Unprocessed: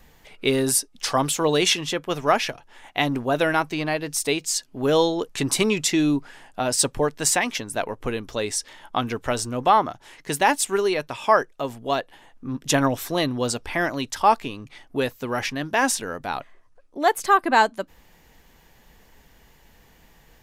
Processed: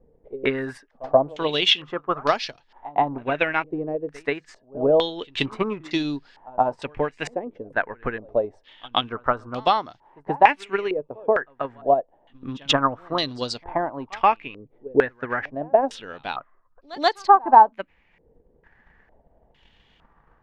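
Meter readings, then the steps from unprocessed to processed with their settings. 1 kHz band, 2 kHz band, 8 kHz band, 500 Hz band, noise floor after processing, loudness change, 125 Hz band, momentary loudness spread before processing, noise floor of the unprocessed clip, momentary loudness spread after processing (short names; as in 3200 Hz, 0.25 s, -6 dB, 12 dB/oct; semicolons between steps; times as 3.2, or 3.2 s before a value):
+2.5 dB, -2.0 dB, -21.0 dB, +0.5 dB, -62 dBFS, 0.0 dB, -5.5 dB, 11 LU, -56 dBFS, 15 LU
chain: pre-echo 0.131 s -18.5 dB; transient shaper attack +8 dB, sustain -4 dB; stepped low-pass 2.2 Hz 470–4500 Hz; gain -7 dB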